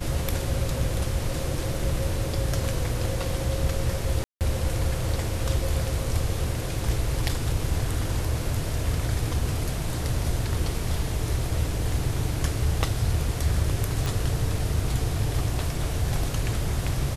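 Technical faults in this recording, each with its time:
0:04.24–0:04.41: drop-out 168 ms
0:14.06: click

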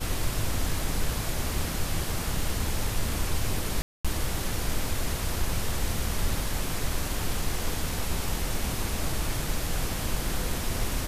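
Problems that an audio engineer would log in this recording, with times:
0:03.82–0:04.05: drop-out 226 ms

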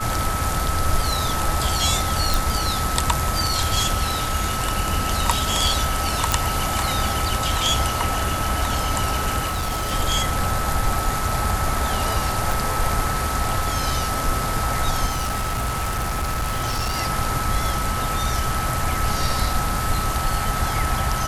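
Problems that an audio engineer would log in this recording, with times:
whistle 1,300 Hz −27 dBFS
0:02.34: click
0:06.32: click
0:09.49–0:09.92: clipping −20.5 dBFS
0:12.52: click
0:15.06–0:16.98: clipping −20 dBFS

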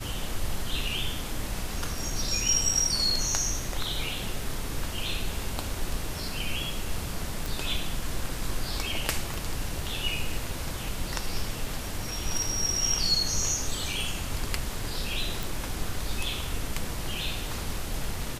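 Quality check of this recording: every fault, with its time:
0:07.46: click
0:09.34: click
0:15.43: click

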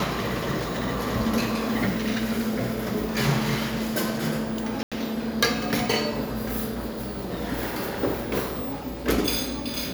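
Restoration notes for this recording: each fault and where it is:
0:04.83–0:04.92: drop-out 86 ms

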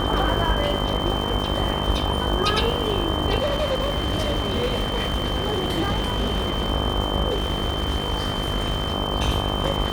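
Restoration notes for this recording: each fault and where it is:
mains buzz 50 Hz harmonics 25 −27 dBFS
surface crackle 500 per second −30 dBFS
whistle 3,100 Hz −29 dBFS
0:03.39–0:06.71: clipping −18.5 dBFS
0:07.30–0:08.94: clipping −18.5 dBFS

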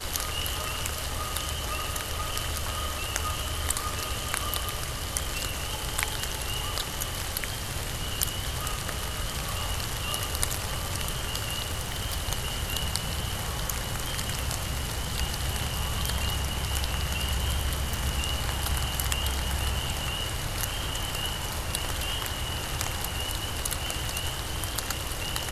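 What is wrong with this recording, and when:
0:11.70–0:12.18: clipping −24 dBFS
0:17.94: click

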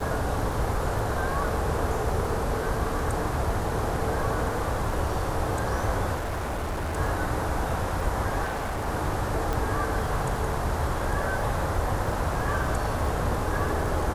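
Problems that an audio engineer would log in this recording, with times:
surface crackle 23 per second −33 dBFS
0:06.14–0:06.98: clipping −26.5 dBFS
0:08.44–0:08.88: clipping −26 dBFS
0:09.53: click

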